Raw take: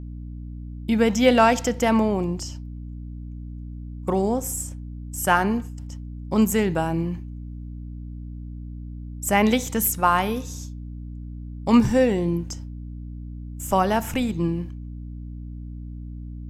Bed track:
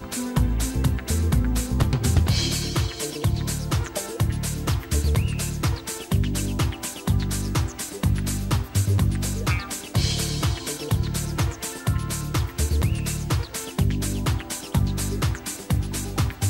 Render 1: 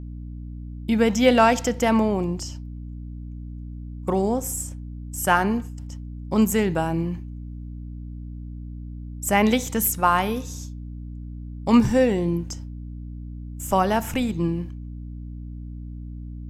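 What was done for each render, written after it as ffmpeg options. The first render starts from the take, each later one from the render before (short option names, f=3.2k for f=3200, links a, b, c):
-af anull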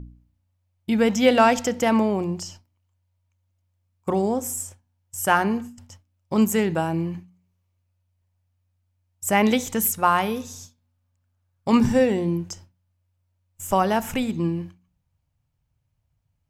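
-af "bandreject=f=60:t=h:w=4,bandreject=f=120:t=h:w=4,bandreject=f=180:t=h:w=4,bandreject=f=240:t=h:w=4,bandreject=f=300:t=h:w=4"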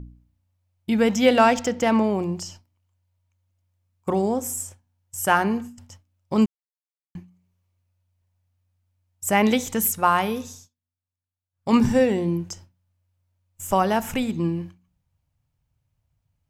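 -filter_complex "[0:a]asettb=1/sr,asplit=3[a][b][c];[a]atrim=end=1.504[d];[b]atrim=start=1.5:end=2.04,asetpts=PTS-STARTPTS,afade=t=in:d=0.004:c=qsin,afade=t=out:st=0.536:d=0.004:c=qsin,adynamicsmooth=sensitivity=6:basefreq=6.1k[e];[c]atrim=start=2.036[f];[d][e]acrossfade=d=0.004:c1=hsin:c2=qsin[g];[g][f]acrossfade=d=0.004:c1=qsin:c2=hsin,asplit=5[h][i][j][k][l];[h]atrim=end=6.46,asetpts=PTS-STARTPTS,afade=t=out:st=6.456:d=0.004:c=hsin[m];[i]atrim=start=6.46:end=7.15,asetpts=PTS-STARTPTS,volume=0[n];[j]atrim=start=7.15:end=10.69,asetpts=PTS-STARTPTS,afade=t=in:d=0.004:c=hsin,afade=t=out:st=3.32:d=0.22:silence=0.1[o];[k]atrim=start=10.69:end=11.51,asetpts=PTS-STARTPTS,volume=-20dB[p];[l]atrim=start=11.51,asetpts=PTS-STARTPTS,afade=t=in:d=0.22:silence=0.1[q];[m][n][o][p][q]concat=n=5:v=0:a=1"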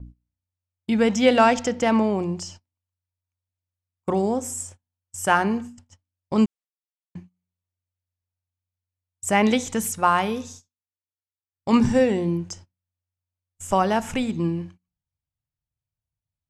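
-af "lowpass=f=9.7k:w=0.5412,lowpass=f=9.7k:w=1.3066,agate=range=-17dB:threshold=-43dB:ratio=16:detection=peak"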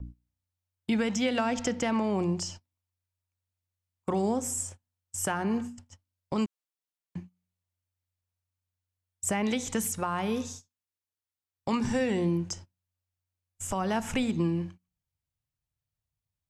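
-filter_complex "[0:a]acrossover=split=350|820[a][b][c];[a]acompressor=threshold=-25dB:ratio=4[d];[b]acompressor=threshold=-32dB:ratio=4[e];[c]acompressor=threshold=-27dB:ratio=4[f];[d][e][f]amix=inputs=3:normalize=0,alimiter=limit=-18.5dB:level=0:latency=1:release=278"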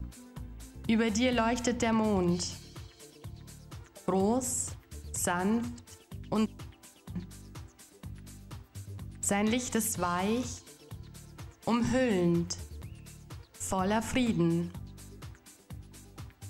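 -filter_complex "[1:a]volume=-22.5dB[a];[0:a][a]amix=inputs=2:normalize=0"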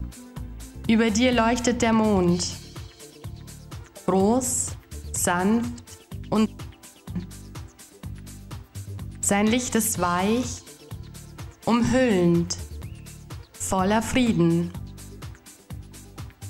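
-af "volume=7.5dB"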